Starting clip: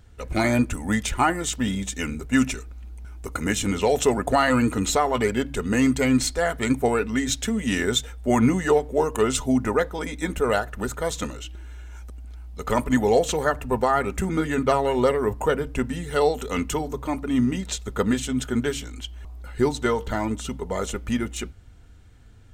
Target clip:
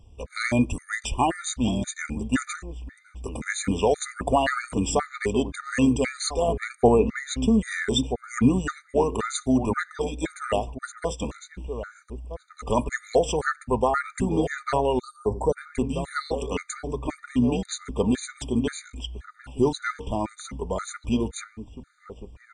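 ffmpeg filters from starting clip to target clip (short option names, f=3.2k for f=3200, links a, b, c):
-filter_complex "[0:a]asettb=1/sr,asplit=3[a][b][c];[a]atrim=end=6.484[d];[b]atrim=start=6.48:end=7.61,asetpts=PTS-STARTPTS,afade=t=in:d=0.004:c=qsin,afade=t=out:st=1.126:d=0.004:c=qsin,tiltshelf=f=1.5k:g=6[e];[c]atrim=start=7.606[f];[d][e]acrossfade=d=0.004:c1=hsin:c2=qsin[g];[g][f]acrossfade=d=0.004:c1=qsin:c2=hsin,asettb=1/sr,asplit=3[h][i][j];[h]atrim=end=10.734[k];[i]atrim=start=10.73:end=11.2,asetpts=PTS-STARTPTS,afade=t=in:d=0.004:c=qsin,afade=t=out:st=0.466:d=0.004:c=qsin,agate=range=-13dB:threshold=-27dB:ratio=16:detection=peak[l];[j]atrim=start=11.196[m];[k][l]acrossfade=d=0.004:c1=hsin:c2=qsin[n];[n][m]acrossfade=d=0.004:c1=qsin:c2=hsin,asplit=2[o][p];[p]adelay=1283,volume=-10dB,highshelf=f=4k:g=-28.9[q];[o][q]amix=inputs=2:normalize=0,aresample=22050,aresample=44100,asplit=3[r][s][t];[r]afade=t=out:st=14.99:d=0.02[u];[s]asuperstop=centerf=2100:order=8:qfactor=0.63,afade=t=in:st=14.99:d=0.02,afade=t=out:st=15.55:d=0.02[v];[t]afade=t=in:st=15.55:d=0.02[w];[u][v][w]amix=inputs=3:normalize=0,afftfilt=real='re*gt(sin(2*PI*1.9*pts/sr)*(1-2*mod(floor(b*sr/1024/1200),2)),0)':imag='im*gt(sin(2*PI*1.9*pts/sr)*(1-2*mod(floor(b*sr/1024/1200),2)),0)':win_size=1024:overlap=0.75"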